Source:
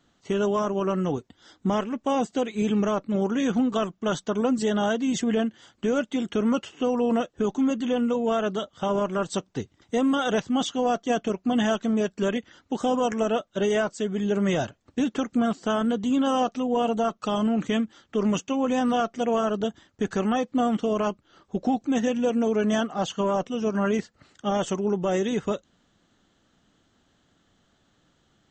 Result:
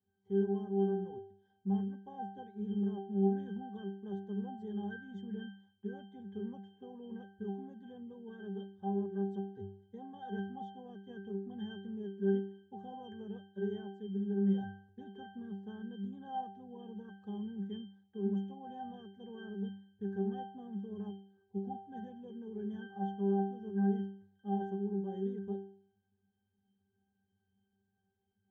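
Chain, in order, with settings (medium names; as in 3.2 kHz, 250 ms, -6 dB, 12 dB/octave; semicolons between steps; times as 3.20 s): peaking EQ 3 kHz -4.5 dB 1.4 oct; pitch-class resonator G, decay 0.54 s; trim +1 dB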